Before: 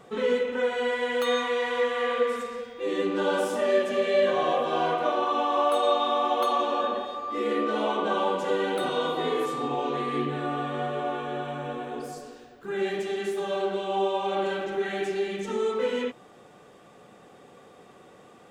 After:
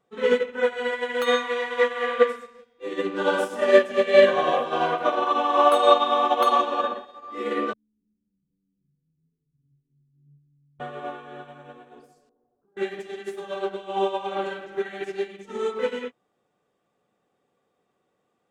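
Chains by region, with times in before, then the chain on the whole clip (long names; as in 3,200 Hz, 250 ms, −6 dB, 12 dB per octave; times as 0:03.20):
0:07.73–0:10.80: inverse Chebyshev low-pass filter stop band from 610 Hz, stop band 70 dB + double-tracking delay 14 ms −5 dB
0:12.29–0:12.77: low-pass filter 1,000 Hz 24 dB per octave + mains-hum notches 50/100/150/200/250/300/350/400 Hz + downward compressor 10 to 1, threshold −43 dBFS
whole clip: dynamic equaliser 1,600 Hz, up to +4 dB, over −41 dBFS, Q 1.2; expander for the loud parts 2.5 to 1, over −39 dBFS; level +9 dB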